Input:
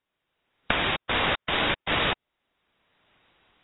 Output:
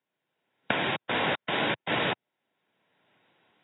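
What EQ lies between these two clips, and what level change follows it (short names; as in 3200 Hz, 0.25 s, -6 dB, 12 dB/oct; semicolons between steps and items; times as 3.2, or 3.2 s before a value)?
HPF 120 Hz 24 dB/oct; high shelf 2900 Hz -9 dB; notch 1200 Hz, Q 6.5; 0.0 dB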